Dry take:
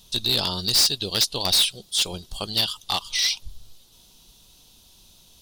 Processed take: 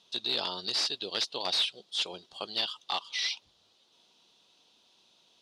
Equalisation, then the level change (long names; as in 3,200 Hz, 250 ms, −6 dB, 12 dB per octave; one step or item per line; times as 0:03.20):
band-pass filter 350–3,700 Hz
−5.0 dB